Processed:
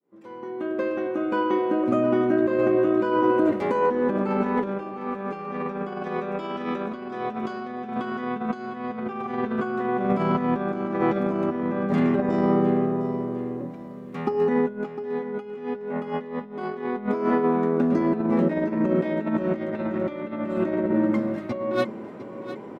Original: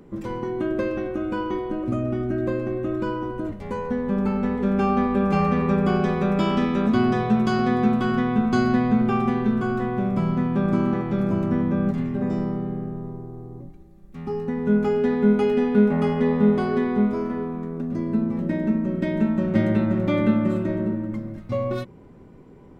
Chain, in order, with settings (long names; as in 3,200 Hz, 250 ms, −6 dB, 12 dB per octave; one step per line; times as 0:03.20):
fade in at the beginning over 3.46 s
high-pass filter 330 Hz 12 dB per octave
high-shelf EQ 4,100 Hz −11 dB
compressor whose output falls as the input rises −32 dBFS, ratio −0.5
on a send: repeating echo 705 ms, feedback 38%, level −13 dB
on the sum: level +8 dB